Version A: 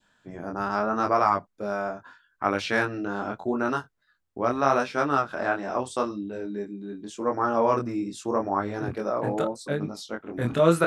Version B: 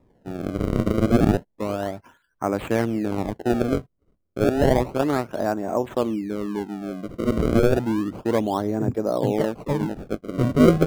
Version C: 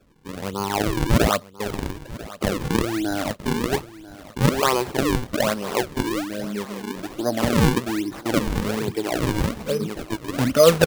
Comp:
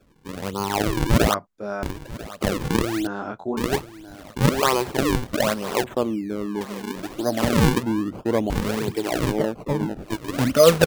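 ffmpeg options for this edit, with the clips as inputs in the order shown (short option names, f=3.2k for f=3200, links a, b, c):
-filter_complex "[0:a]asplit=2[a][b];[1:a]asplit=3[c][d][e];[2:a]asplit=6[f][g][h][i][j][k];[f]atrim=end=1.342[l];[a]atrim=start=1.338:end=1.832[m];[g]atrim=start=1.828:end=3.072[n];[b]atrim=start=3.068:end=3.572[o];[h]atrim=start=3.568:end=5.842[p];[c]atrim=start=5.838:end=6.612[q];[i]atrim=start=6.608:end=7.832[r];[d]atrim=start=7.828:end=8.502[s];[j]atrim=start=8.498:end=9.38[t];[e]atrim=start=9.28:end=10.11[u];[k]atrim=start=10.01[v];[l][m]acrossfade=d=0.004:c1=hsin:c2=hsin[w];[w][n]acrossfade=d=0.004:c1=hsin:c2=hsin[x];[x][o]acrossfade=d=0.004:c1=hsin:c2=hsin[y];[y][p]acrossfade=d=0.004:c1=hsin:c2=hsin[z];[z][q]acrossfade=d=0.004:c1=hsin:c2=hsin[aa];[aa][r]acrossfade=d=0.004:c1=hsin:c2=hsin[ab];[ab][s]acrossfade=d=0.004:c1=hsin:c2=hsin[ac];[ac][t]acrossfade=d=0.004:c1=hsin:c2=hsin[ad];[ad][u]acrossfade=d=0.1:c1=tri:c2=tri[ae];[ae][v]acrossfade=d=0.1:c1=tri:c2=tri"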